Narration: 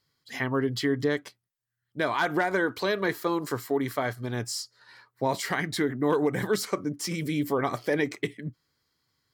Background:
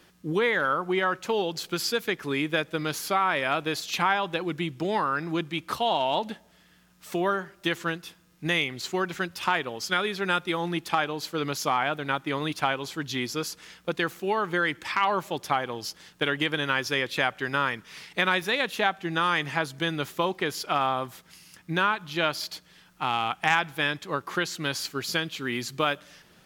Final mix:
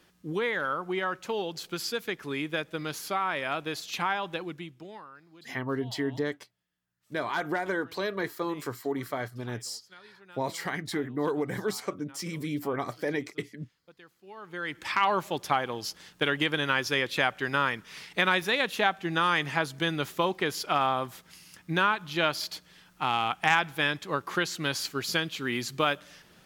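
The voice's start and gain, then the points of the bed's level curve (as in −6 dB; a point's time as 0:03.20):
5.15 s, −4.5 dB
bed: 0:04.39 −5 dB
0:05.27 −26.5 dB
0:14.16 −26.5 dB
0:14.87 −0.5 dB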